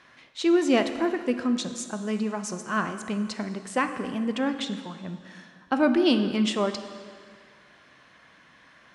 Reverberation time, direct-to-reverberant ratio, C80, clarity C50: 1.9 s, 8.0 dB, 11.0 dB, 9.5 dB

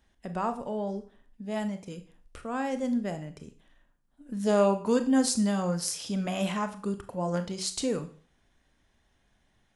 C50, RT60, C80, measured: 13.5 dB, 0.45 s, 18.5 dB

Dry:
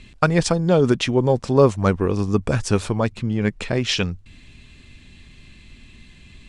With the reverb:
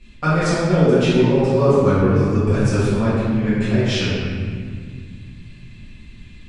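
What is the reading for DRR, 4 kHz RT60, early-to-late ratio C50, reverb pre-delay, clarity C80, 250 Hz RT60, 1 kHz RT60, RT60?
-14.5 dB, 1.3 s, -4.0 dB, 4 ms, -1.5 dB, 3.3 s, 1.8 s, 2.0 s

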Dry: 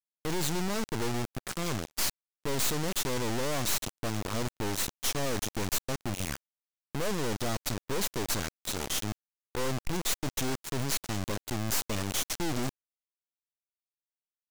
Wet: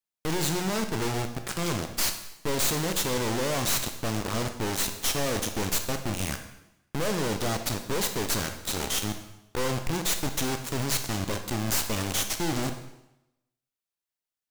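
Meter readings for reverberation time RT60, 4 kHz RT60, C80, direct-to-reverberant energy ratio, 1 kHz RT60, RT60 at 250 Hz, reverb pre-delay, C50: 0.90 s, 0.85 s, 11.5 dB, 6.0 dB, 0.90 s, 0.90 s, 6 ms, 8.5 dB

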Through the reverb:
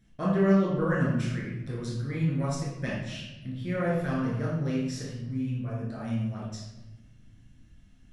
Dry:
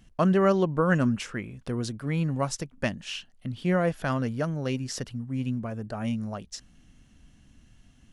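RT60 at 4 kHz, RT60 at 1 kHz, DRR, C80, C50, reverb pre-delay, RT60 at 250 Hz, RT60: 0.80 s, 0.95 s, -6.5 dB, 3.5 dB, 0.5 dB, 9 ms, 1.7 s, 1.0 s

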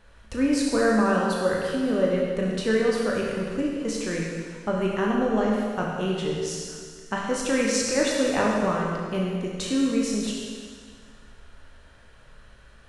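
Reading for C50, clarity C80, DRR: -0.5 dB, 1.0 dB, -3.0 dB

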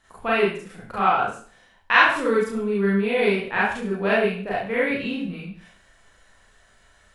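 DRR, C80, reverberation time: -7.5 dB, 7.0 dB, not exponential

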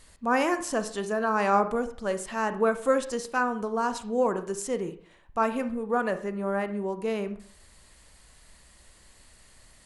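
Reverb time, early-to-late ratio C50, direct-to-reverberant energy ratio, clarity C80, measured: 0.50 s, 12.5 dB, 10.0 dB, 17.0 dB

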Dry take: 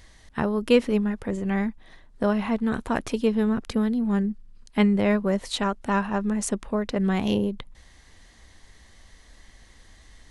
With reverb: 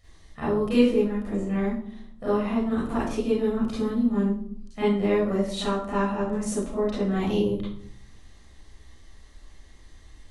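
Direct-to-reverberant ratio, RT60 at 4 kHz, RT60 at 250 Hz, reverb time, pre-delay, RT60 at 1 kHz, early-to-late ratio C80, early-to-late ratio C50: -10.5 dB, 0.40 s, 0.95 s, 0.60 s, 32 ms, 0.55 s, 6.0 dB, -0.5 dB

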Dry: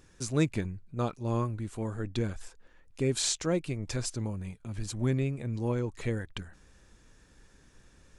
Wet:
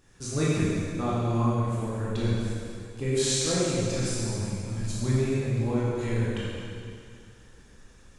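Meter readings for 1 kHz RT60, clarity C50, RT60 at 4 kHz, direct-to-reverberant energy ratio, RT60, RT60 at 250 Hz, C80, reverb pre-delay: 2.4 s, -3.5 dB, 2.2 s, -8.5 dB, 2.4 s, 2.4 s, -1.5 dB, 6 ms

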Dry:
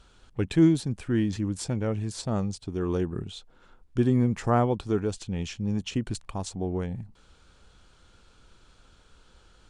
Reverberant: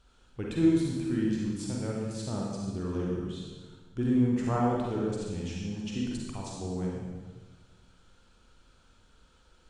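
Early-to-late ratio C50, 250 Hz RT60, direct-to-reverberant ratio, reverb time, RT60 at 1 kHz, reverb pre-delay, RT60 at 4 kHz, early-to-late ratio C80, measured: -1.5 dB, 1.6 s, -3.0 dB, 1.4 s, 1.3 s, 38 ms, 1.3 s, 1.0 dB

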